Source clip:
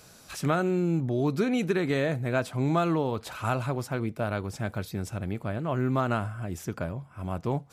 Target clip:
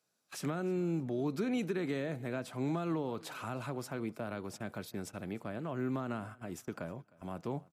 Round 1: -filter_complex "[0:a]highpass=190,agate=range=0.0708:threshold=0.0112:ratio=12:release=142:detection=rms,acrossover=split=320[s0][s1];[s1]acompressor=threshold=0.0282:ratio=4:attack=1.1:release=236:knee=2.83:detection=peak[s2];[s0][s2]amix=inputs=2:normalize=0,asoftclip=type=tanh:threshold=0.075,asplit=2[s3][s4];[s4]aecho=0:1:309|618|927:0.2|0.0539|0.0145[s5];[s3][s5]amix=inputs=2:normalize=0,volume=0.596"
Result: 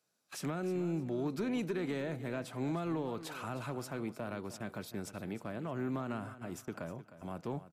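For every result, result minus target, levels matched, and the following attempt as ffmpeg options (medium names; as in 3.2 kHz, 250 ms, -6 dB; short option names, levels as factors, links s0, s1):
saturation: distortion +20 dB; echo-to-direct +9.5 dB
-filter_complex "[0:a]highpass=190,agate=range=0.0708:threshold=0.0112:ratio=12:release=142:detection=rms,acrossover=split=320[s0][s1];[s1]acompressor=threshold=0.0282:ratio=4:attack=1.1:release=236:knee=2.83:detection=peak[s2];[s0][s2]amix=inputs=2:normalize=0,asoftclip=type=tanh:threshold=0.266,asplit=2[s3][s4];[s4]aecho=0:1:309|618|927:0.2|0.0539|0.0145[s5];[s3][s5]amix=inputs=2:normalize=0,volume=0.596"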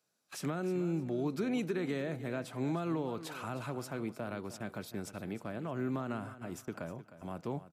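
echo-to-direct +9.5 dB
-filter_complex "[0:a]highpass=190,agate=range=0.0708:threshold=0.0112:ratio=12:release=142:detection=rms,acrossover=split=320[s0][s1];[s1]acompressor=threshold=0.0282:ratio=4:attack=1.1:release=236:knee=2.83:detection=peak[s2];[s0][s2]amix=inputs=2:normalize=0,asoftclip=type=tanh:threshold=0.266,asplit=2[s3][s4];[s4]aecho=0:1:309|618:0.0668|0.018[s5];[s3][s5]amix=inputs=2:normalize=0,volume=0.596"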